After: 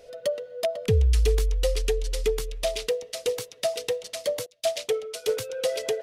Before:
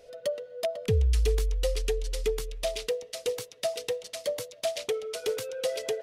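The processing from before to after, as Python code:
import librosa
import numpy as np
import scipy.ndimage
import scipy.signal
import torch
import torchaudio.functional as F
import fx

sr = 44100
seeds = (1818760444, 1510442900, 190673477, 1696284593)

y = fx.band_widen(x, sr, depth_pct=100, at=(4.46, 5.5))
y = y * 10.0 ** (3.5 / 20.0)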